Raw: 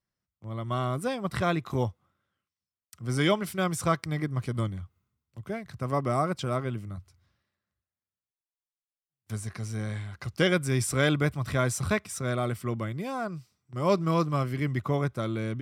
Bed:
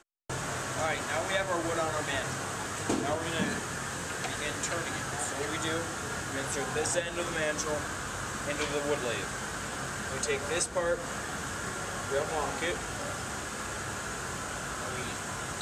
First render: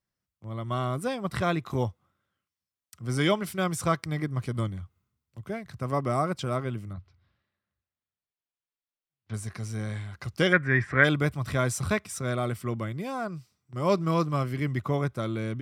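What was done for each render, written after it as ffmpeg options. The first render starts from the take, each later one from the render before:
-filter_complex "[0:a]asettb=1/sr,asplit=3[a][b][c];[a]atrim=end=6.934[d];[b]atrim=start=6.93:end=9.34,asetpts=PTS-STARTPTS,afade=t=in:d=0.004:c=qsin,afade=t=out:st=2.406:d=0.004:c=qsin,lowpass=f=4.3k:w=0.5412,lowpass=f=4.3k:w=1.3066[e];[c]atrim=start=9.336[f];[d][e]acrossfade=d=0.004:c1=hsin:c2=qsin[g];[g][f]acrossfade=d=0.004:c1=qsin:c2=hsin,asplit=3[h][i][j];[h]afade=t=out:st=10.52:d=0.02[k];[i]lowpass=f=1.8k:t=q:w=11,afade=t=in:st=10.52:d=0.02,afade=t=out:st=11.03:d=0.02[l];[j]afade=t=in:st=11.03:d=0.02[m];[k][l][m]amix=inputs=3:normalize=0"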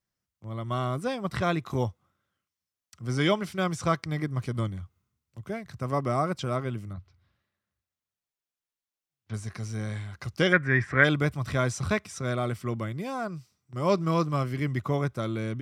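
-filter_complex "[0:a]acrossover=split=6700[a][b];[b]acompressor=threshold=-53dB:ratio=4:attack=1:release=60[c];[a][c]amix=inputs=2:normalize=0,equalizer=f=6.1k:w=2.5:g=3"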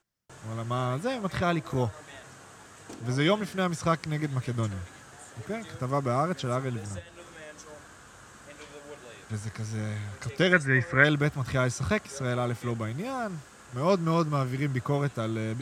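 -filter_complex "[1:a]volume=-14.5dB[a];[0:a][a]amix=inputs=2:normalize=0"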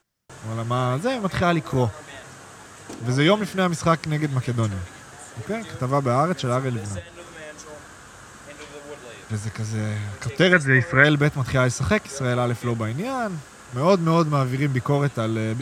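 -af "volume=6.5dB,alimiter=limit=-1dB:level=0:latency=1"

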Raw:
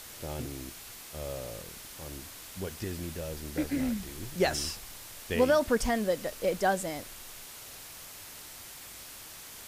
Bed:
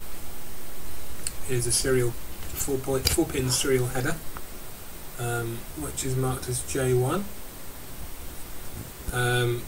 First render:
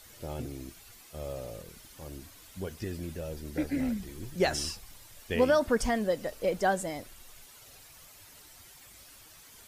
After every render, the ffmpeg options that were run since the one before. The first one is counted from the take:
-af "afftdn=nr=10:nf=-47"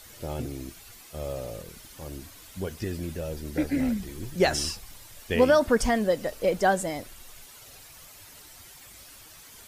-af "volume=4.5dB"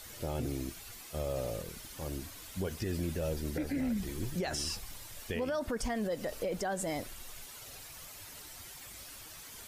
-af "acompressor=threshold=-26dB:ratio=6,alimiter=level_in=2dB:limit=-24dB:level=0:latency=1:release=50,volume=-2dB"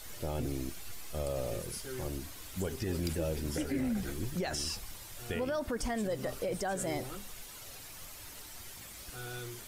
-filter_complex "[1:a]volume=-19dB[a];[0:a][a]amix=inputs=2:normalize=0"

